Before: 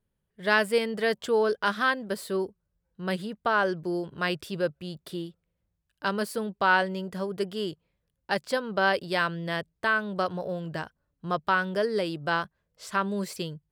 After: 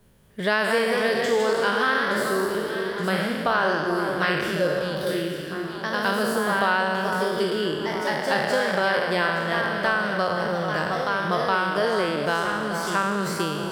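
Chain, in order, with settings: spectral trails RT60 1.23 s; echoes that change speed 0.226 s, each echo +1 st, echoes 2, each echo -6 dB; on a send: echo with dull and thin repeats by turns 0.435 s, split 1600 Hz, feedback 56%, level -9.5 dB; on the sum: three-band squash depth 70%

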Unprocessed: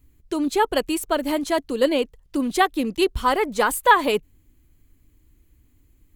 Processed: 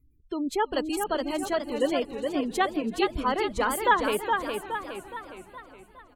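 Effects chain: spectral gate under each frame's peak -30 dB strong; frequency-shifting echo 0.331 s, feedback 62%, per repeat -58 Hz, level -21.5 dB; warbling echo 0.416 s, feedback 49%, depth 108 cents, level -5 dB; gain -6.5 dB

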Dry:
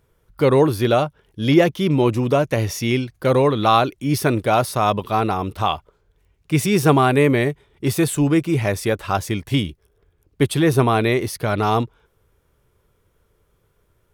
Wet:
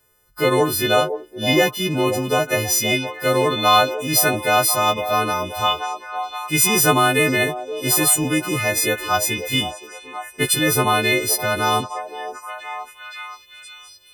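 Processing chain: frequency quantiser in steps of 3 st; low shelf 320 Hz -7 dB; delay with a stepping band-pass 0.522 s, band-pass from 550 Hz, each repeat 0.7 oct, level -7 dB

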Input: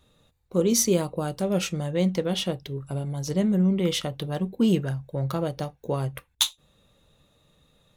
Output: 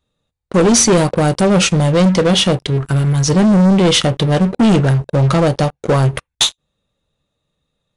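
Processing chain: 2.7–3.3 fifteen-band EQ 250 Hz -4 dB, 630 Hz -10 dB, 1600 Hz +7 dB; sample leveller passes 5; downsampling 22050 Hz

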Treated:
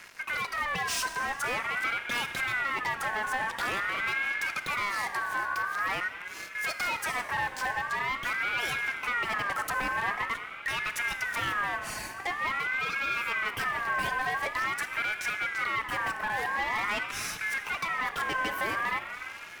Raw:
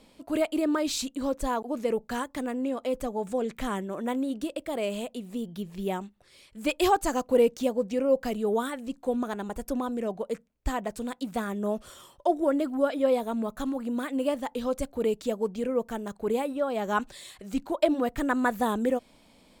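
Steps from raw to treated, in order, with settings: compressor, threshold -32 dBFS, peak gain reduction 14.5 dB; sample leveller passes 5; plate-style reverb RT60 4.2 s, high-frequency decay 0.45×, DRR 7.5 dB; ring modulator with a swept carrier 1600 Hz, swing 20%, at 0.46 Hz; gain -4.5 dB

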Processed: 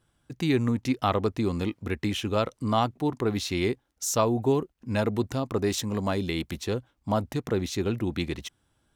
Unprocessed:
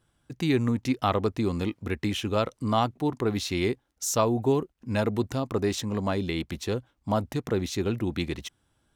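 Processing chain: 5.66–6.58 high shelf 6900 Hz +7 dB

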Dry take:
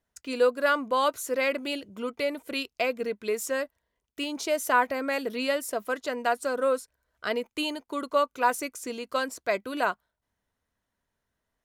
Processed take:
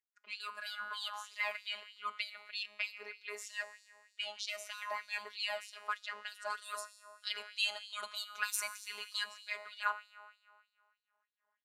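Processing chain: recorder AGC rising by 7.5 dB/s; low-pass opened by the level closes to 1400 Hz, open at -20.5 dBFS; 6.5–9.24 high shelf 3000 Hz +11 dB; resonator 90 Hz, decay 1.9 s, mix 70%; robotiser 208 Hz; LFO high-pass sine 3.2 Hz 830–4200 Hz; gain +1.5 dB

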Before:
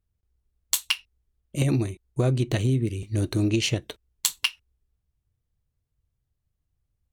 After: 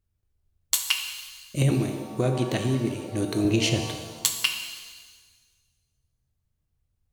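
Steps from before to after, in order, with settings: 1.7–3.45 HPF 170 Hz 12 dB/oct; shimmer reverb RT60 1.4 s, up +7 st, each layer -8 dB, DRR 4.5 dB

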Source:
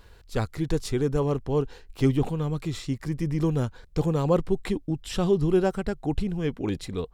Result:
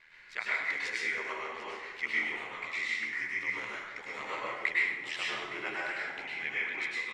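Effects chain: bell 3200 Hz -10.5 dB 2.1 oct; in parallel at +1 dB: limiter -18 dBFS, peak gain reduction 7 dB; on the sum: resonant high-pass 2100 Hz, resonance Q 8.9; ring modulator 40 Hz; added noise pink -78 dBFS; air absorption 150 m; on a send: echo 0.745 s -16.5 dB; on the sum: plate-style reverb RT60 1.1 s, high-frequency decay 0.65×, pre-delay 90 ms, DRR -6.5 dB

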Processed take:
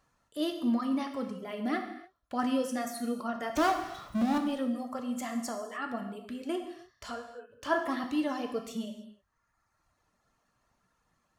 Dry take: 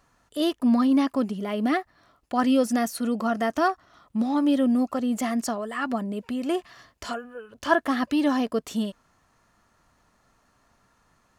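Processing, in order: reverb removal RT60 1.4 s; 3.55–4.38 power-law curve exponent 0.5; non-linear reverb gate 0.33 s falling, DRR 4 dB; gain -8 dB

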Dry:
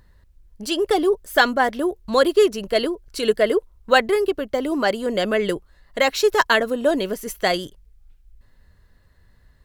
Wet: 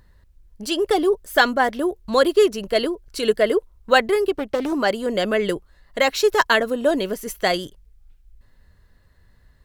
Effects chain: 4.33–4.73 Doppler distortion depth 0.27 ms

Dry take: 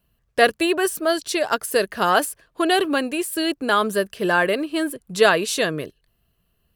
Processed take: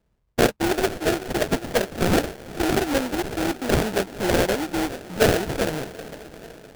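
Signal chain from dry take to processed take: diffused feedback echo 0.463 s, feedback 54%, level -16 dB; sample-rate reducer 1100 Hz, jitter 20%; gain -2 dB

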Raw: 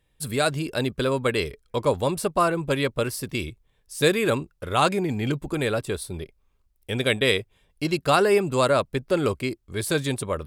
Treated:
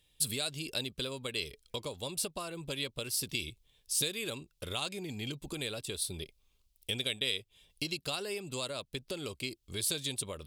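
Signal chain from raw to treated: compressor 6:1, threshold -32 dBFS, peak gain reduction 16.5 dB; resonant high shelf 2300 Hz +11 dB, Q 1.5; gain -5.5 dB

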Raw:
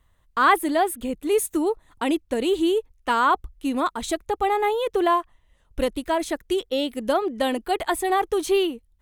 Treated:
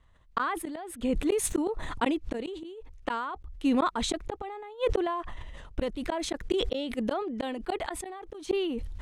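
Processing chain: flipped gate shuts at -15 dBFS, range -35 dB; air absorption 75 m; sustainer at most 28 dB/s

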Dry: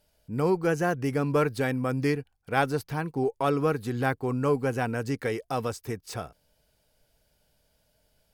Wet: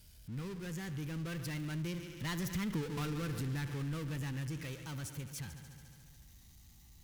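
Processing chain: speed glide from 89% -> 148%; Doppler pass-by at 2.79, 39 m/s, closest 2.4 m; HPF 61 Hz 6 dB/oct; low shelf 140 Hz +8 dB; notch 580 Hz, Q 17; multi-head echo 71 ms, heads first and second, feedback 60%, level -20 dB; power-law curve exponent 0.5; passive tone stack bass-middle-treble 6-0-2; compressor 5:1, threshold -50 dBFS, peak gain reduction 10 dB; gain +16.5 dB

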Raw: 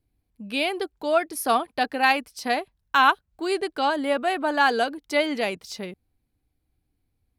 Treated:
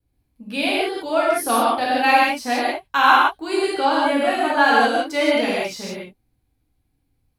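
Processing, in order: non-linear reverb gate 0.21 s flat, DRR -7 dB; vibrato 0.56 Hz 14 cents; gain -2.5 dB

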